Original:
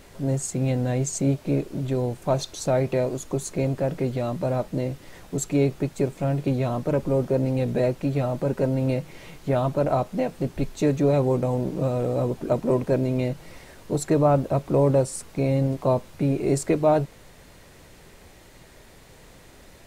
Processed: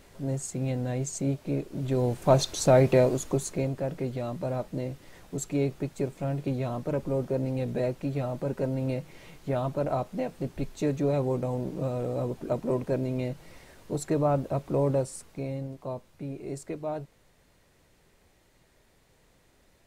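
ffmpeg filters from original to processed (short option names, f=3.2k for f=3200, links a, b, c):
-af "volume=3dB,afade=t=in:st=1.71:d=0.66:silence=0.354813,afade=t=out:st=2.99:d=0.72:silence=0.354813,afade=t=out:st=14.91:d=0.77:silence=0.398107"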